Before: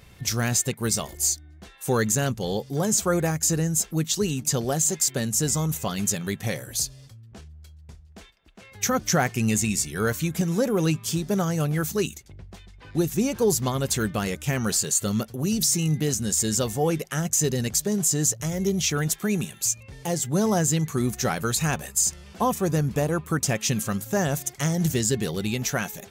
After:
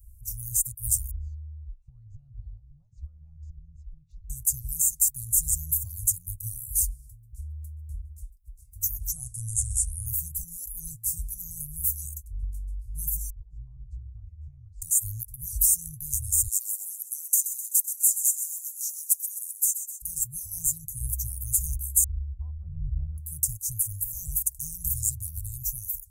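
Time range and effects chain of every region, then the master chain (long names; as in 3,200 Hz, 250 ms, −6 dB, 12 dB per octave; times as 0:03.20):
0:01.11–0:04.30: Butterworth low-pass 3,000 Hz + downward compressor 12 to 1, threshold −32 dBFS
0:09.12–0:10.06: phaser with its sweep stopped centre 910 Hz, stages 4 + bad sample-rate conversion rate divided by 2×, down none, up filtered
0:13.30–0:14.82: low-pass filter 2,300 Hz 24 dB per octave + downward compressor 3 to 1, threshold −36 dBFS + multiband upward and downward expander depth 40%
0:16.47–0:20.02: Butterworth high-pass 570 Hz 96 dB per octave + repeating echo 128 ms, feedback 60%, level −10.5 dB
0:22.04–0:23.18: linear-phase brick-wall low-pass 3,300 Hz + low-shelf EQ 110 Hz +6 dB
whole clip: inverse Chebyshev band-stop filter 200–3,400 Hz, stop band 60 dB; high-shelf EQ 2,400 Hz −6.5 dB; automatic gain control gain up to 8 dB; level +8.5 dB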